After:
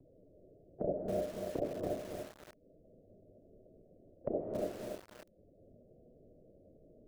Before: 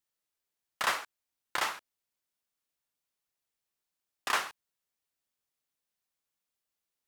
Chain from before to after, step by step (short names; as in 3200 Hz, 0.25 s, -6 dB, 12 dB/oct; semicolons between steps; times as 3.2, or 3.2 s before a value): bin magnitudes rounded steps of 15 dB; gate -51 dBFS, range -11 dB; steep low-pass 670 Hz 96 dB/oct; de-hum 77.96 Hz, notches 3; upward compressor, threshold -43 dBFS; non-linear reverb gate 0.33 s rising, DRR 1 dB; frequency shift -29 Hz; lo-fi delay 0.282 s, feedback 35%, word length 10-bit, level -3 dB; gain +10.5 dB